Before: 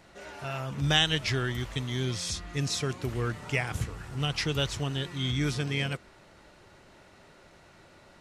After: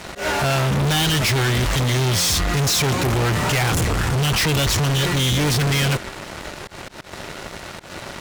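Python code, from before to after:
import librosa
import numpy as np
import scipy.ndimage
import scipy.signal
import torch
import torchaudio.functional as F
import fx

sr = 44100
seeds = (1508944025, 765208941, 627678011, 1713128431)

y = fx.fuzz(x, sr, gain_db=46.0, gate_db=-56.0)
y = fx.auto_swell(y, sr, attack_ms=125.0)
y = F.gain(torch.from_numpy(y), -4.5).numpy()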